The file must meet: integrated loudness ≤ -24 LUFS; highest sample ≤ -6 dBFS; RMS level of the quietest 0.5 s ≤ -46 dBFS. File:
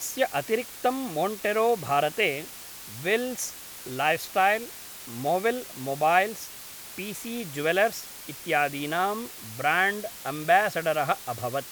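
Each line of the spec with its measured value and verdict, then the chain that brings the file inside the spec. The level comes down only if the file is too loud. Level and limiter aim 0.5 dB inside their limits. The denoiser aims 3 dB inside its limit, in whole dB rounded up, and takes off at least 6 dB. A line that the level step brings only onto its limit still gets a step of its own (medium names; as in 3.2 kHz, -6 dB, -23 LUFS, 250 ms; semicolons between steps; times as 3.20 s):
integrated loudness -26.5 LUFS: pass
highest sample -8.0 dBFS: pass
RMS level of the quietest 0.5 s -42 dBFS: fail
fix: noise reduction 7 dB, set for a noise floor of -42 dBFS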